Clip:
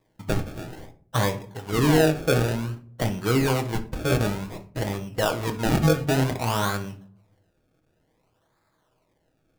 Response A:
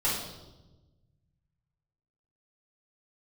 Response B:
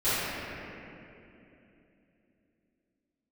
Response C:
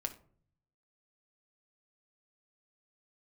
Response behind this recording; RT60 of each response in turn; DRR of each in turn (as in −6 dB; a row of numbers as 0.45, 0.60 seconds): C; 1.1, 2.9, 0.50 seconds; −9.5, −20.5, 5.0 decibels